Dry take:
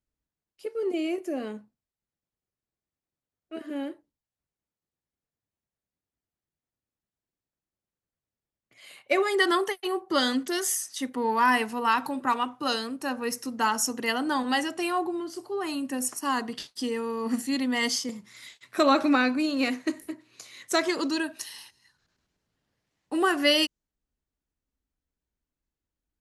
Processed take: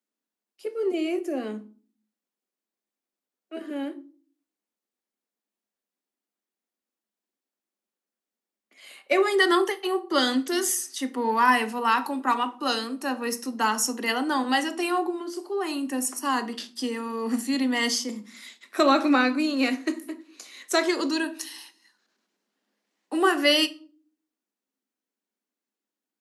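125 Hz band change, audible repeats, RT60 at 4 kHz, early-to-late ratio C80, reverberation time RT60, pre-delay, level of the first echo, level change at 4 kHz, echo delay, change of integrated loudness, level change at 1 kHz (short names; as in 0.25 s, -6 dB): n/a, none, 0.30 s, 24.5 dB, 0.45 s, 3 ms, none, +2.0 dB, none, +2.0 dB, +2.0 dB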